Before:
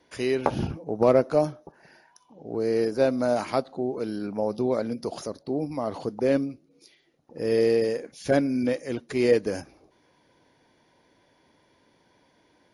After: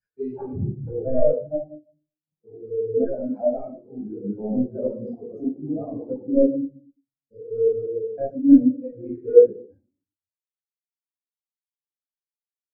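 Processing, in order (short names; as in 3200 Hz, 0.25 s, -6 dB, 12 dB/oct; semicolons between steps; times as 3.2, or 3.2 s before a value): local time reversal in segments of 0.174 s; spectral delete 6.31–8.14, 620–3800 Hz; sample leveller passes 2; vocal rider 2 s; reverb RT60 0.85 s, pre-delay 15 ms, DRR -4 dB; spectral expander 2.5:1; gain -4 dB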